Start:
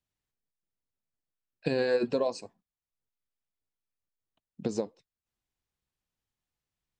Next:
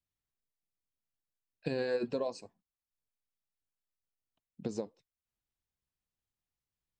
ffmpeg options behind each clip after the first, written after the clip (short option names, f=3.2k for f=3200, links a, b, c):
-af "lowshelf=f=150:g=4,volume=-6.5dB"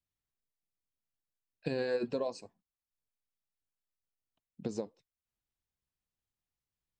-af anull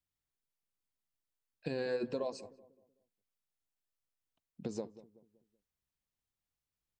-filter_complex "[0:a]asplit=2[a][b];[b]alimiter=level_in=4.5dB:limit=-24dB:level=0:latency=1:release=85,volume=-4.5dB,volume=-2dB[c];[a][c]amix=inputs=2:normalize=0,asplit=2[d][e];[e]adelay=189,lowpass=f=800:p=1,volume=-15.5dB,asplit=2[f][g];[g]adelay=189,lowpass=f=800:p=1,volume=0.43,asplit=2[h][i];[i]adelay=189,lowpass=f=800:p=1,volume=0.43,asplit=2[j][k];[k]adelay=189,lowpass=f=800:p=1,volume=0.43[l];[d][f][h][j][l]amix=inputs=5:normalize=0,volume=-6dB"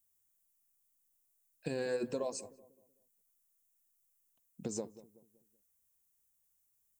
-af "aexciter=amount=6:drive=5:freq=6.2k"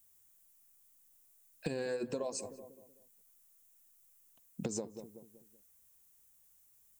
-af "acompressor=threshold=-45dB:ratio=5,volume=10dB"